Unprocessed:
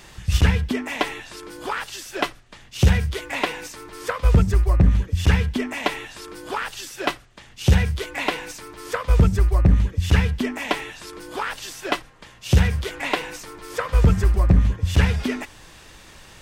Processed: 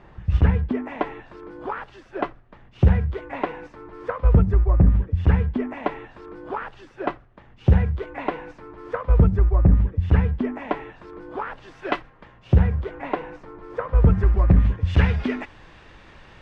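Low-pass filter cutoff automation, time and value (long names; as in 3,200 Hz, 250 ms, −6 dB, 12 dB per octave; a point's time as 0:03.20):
0:11.62 1,200 Hz
0:11.94 2,300 Hz
0:12.57 1,100 Hz
0:13.94 1,100 Hz
0:14.56 2,500 Hz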